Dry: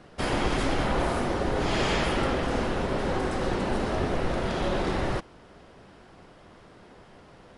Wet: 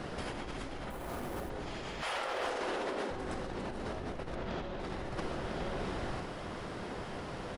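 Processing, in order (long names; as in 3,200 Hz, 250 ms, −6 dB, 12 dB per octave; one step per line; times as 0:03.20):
0:00.90–0:01.50: bad sample-rate conversion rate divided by 4×, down none, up hold
0:02.01–0:03.10: high-pass filter 640 Hz → 230 Hz 24 dB per octave
0:04.35–0:04.80: high-frequency loss of the air 85 metres
single-tap delay 1,002 ms −22 dB
compressor whose output falls as the input rises −38 dBFS, ratio −1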